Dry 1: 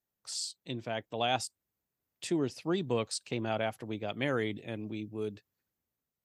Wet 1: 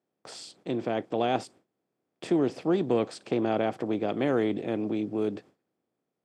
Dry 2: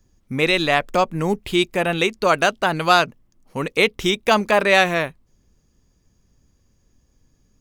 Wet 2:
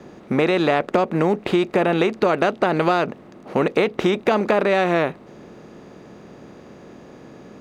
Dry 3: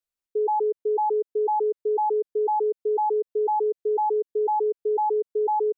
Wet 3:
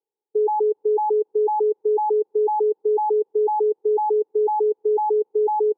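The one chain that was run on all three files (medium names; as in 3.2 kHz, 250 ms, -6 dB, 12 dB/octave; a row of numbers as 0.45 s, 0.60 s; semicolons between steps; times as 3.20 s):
spectral levelling over time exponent 0.6; gate with hold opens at -43 dBFS; high-pass 260 Hz 12 dB/octave; tilt EQ -4 dB/octave; compression 10:1, threshold -14 dBFS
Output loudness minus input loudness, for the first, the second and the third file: +6.0 LU, -1.0 LU, +3.5 LU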